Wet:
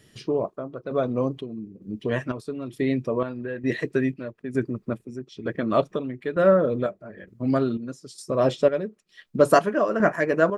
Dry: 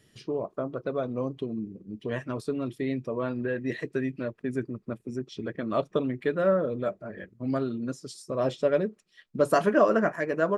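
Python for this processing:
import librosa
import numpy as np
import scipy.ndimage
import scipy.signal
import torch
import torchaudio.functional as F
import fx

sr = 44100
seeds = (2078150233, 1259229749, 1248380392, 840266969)

y = fx.chopper(x, sr, hz=1.1, depth_pct=60, duty_pct=55)
y = y * librosa.db_to_amplitude(6.0)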